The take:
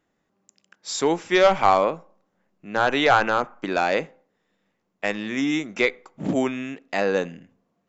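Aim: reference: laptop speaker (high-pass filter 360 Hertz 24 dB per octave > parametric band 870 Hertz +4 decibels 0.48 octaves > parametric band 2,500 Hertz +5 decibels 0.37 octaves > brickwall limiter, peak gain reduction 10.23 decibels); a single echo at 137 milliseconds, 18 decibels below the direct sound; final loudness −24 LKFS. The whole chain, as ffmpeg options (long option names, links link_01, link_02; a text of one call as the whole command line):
ffmpeg -i in.wav -af "highpass=frequency=360:width=0.5412,highpass=frequency=360:width=1.3066,equalizer=frequency=870:width_type=o:width=0.48:gain=4,equalizer=frequency=2500:width_type=o:width=0.37:gain=5,aecho=1:1:137:0.126,volume=1dB,alimiter=limit=-10.5dB:level=0:latency=1" out.wav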